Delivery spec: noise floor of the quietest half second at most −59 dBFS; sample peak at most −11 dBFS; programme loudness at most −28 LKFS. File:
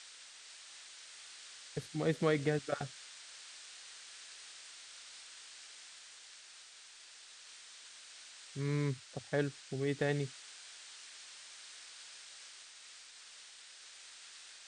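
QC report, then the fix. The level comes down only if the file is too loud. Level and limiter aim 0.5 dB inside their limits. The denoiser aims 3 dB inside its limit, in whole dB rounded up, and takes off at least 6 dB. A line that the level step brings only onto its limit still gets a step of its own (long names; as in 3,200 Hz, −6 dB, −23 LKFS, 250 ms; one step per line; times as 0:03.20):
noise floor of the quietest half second −56 dBFS: out of spec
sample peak −19.0 dBFS: in spec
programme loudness −41.5 LKFS: in spec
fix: broadband denoise 6 dB, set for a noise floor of −56 dBFS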